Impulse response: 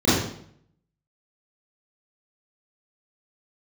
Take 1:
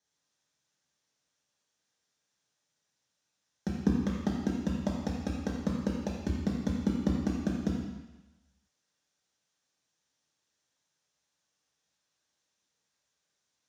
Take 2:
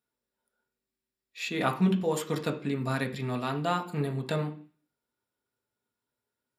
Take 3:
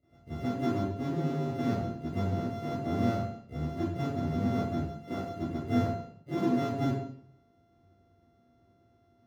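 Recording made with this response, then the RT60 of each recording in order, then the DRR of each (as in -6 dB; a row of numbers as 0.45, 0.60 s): 3; 1.1, 0.40, 0.65 s; -3.5, 1.0, -13.0 dB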